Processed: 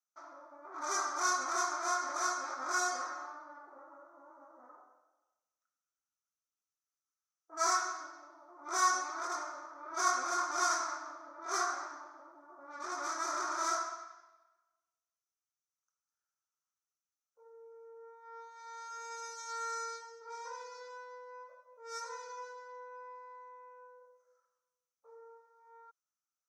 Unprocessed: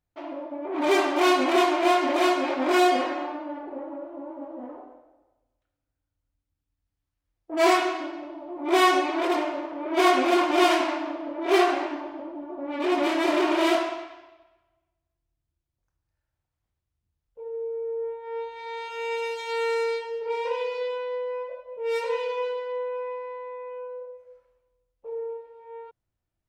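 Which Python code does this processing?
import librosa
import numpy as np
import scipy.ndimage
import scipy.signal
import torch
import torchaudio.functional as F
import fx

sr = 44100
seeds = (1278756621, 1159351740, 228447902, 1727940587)

y = fx.double_bandpass(x, sr, hz=2800.0, octaves=2.2)
y = fx.high_shelf(y, sr, hz=4400.0, db=10.5)
y = F.gain(torch.from_numpy(y), 1.5).numpy()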